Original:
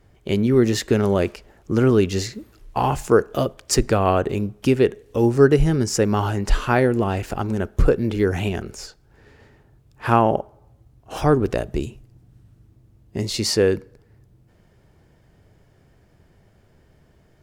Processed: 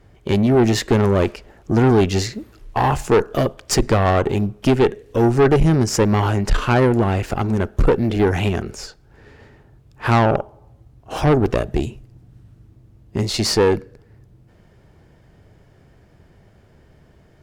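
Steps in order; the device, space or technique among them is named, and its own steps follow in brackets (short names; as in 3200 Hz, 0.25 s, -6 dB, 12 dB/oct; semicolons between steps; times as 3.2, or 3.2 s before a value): tube preamp driven hard (tube stage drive 16 dB, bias 0.5; high shelf 6500 Hz -6 dB); gain +7 dB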